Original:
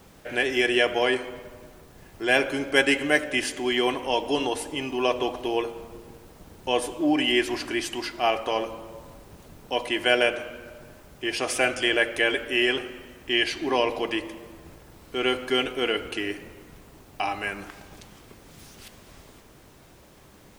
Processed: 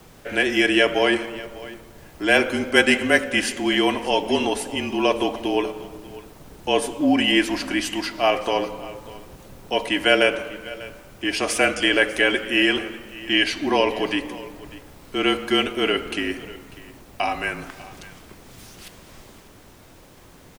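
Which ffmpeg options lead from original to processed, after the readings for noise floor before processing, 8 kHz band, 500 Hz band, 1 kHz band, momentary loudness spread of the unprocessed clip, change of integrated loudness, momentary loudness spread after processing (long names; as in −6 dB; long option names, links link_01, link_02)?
−52 dBFS, +4.0 dB, +3.0 dB, +3.5 dB, 16 LU, +4.0 dB, 19 LU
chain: -filter_complex "[0:a]afreqshift=-33,asplit=2[link_01][link_02];[link_02]aecho=0:1:595:0.112[link_03];[link_01][link_03]amix=inputs=2:normalize=0,volume=4dB"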